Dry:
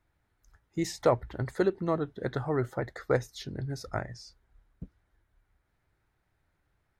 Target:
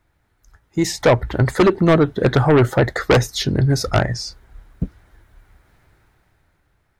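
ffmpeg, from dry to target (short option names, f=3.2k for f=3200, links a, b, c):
-af "aeval=exprs='clip(val(0),-1,0.106)':c=same,dynaudnorm=f=200:g=11:m=11dB,aeval=exprs='0.668*sin(PI/2*3.16*val(0)/0.668)':c=same,volume=-4.5dB"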